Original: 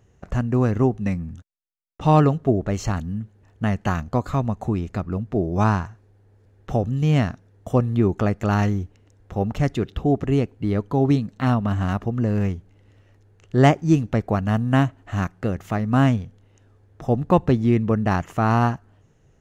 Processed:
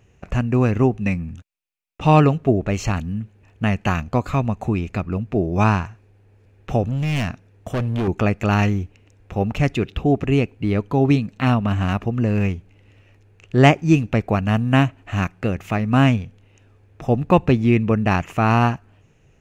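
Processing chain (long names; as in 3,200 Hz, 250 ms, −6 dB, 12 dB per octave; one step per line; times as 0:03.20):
parametric band 2,500 Hz +12 dB 0.38 octaves
0:06.83–0:08.08: gain into a clipping stage and back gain 21 dB
level +2 dB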